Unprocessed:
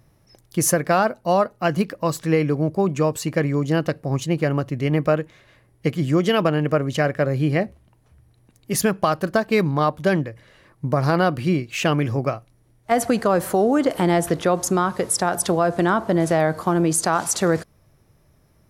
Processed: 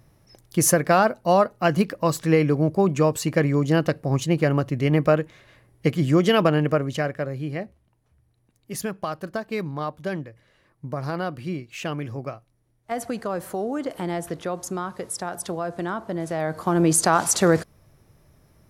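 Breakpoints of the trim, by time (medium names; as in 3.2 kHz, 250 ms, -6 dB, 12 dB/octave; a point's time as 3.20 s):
6.57 s +0.5 dB
7.41 s -9.5 dB
16.30 s -9.5 dB
16.89 s +1.5 dB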